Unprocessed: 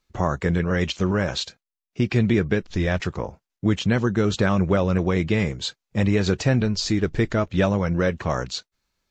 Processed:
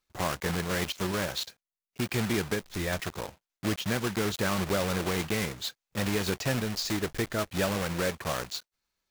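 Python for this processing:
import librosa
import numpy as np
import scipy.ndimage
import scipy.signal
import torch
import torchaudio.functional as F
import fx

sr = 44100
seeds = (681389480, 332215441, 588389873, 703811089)

y = fx.block_float(x, sr, bits=3)
y = fx.low_shelf(y, sr, hz=330.0, db=-6.0)
y = F.gain(torch.from_numpy(y), -6.0).numpy()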